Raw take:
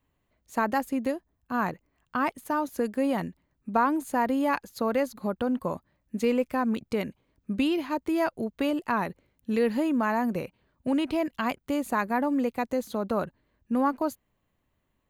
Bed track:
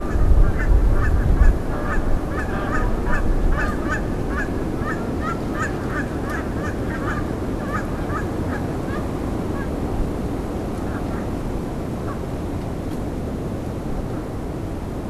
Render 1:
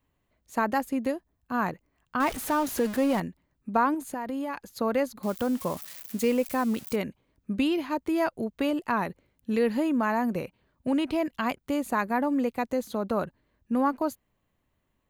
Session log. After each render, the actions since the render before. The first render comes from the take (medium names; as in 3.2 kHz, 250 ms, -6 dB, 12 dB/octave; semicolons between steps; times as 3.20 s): 2.20–3.20 s: jump at every zero crossing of -31.5 dBFS; 3.94–4.66 s: compression 12:1, threshold -28 dBFS; 5.23–6.96 s: zero-crossing glitches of -30.5 dBFS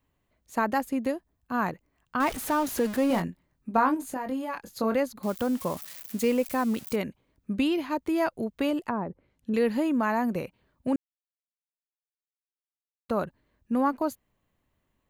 3.08–4.96 s: doubling 23 ms -7 dB; 8.84–9.54 s: low-pass that closes with the level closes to 750 Hz, closed at -28 dBFS; 10.96–13.09 s: mute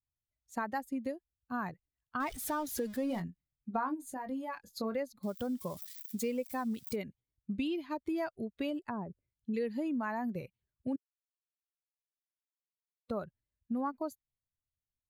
expander on every frequency bin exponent 1.5; compression 2.5:1, threshold -35 dBFS, peak gain reduction 10.5 dB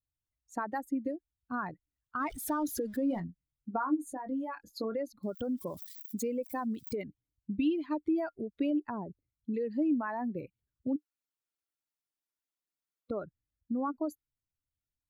resonances exaggerated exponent 1.5; small resonant body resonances 300/1400 Hz, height 9 dB, ringing for 65 ms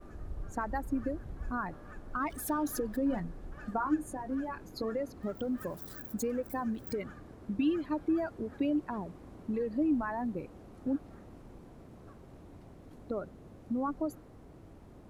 add bed track -26 dB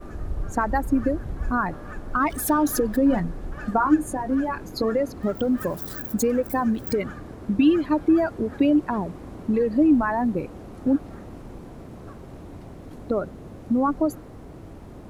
trim +11.5 dB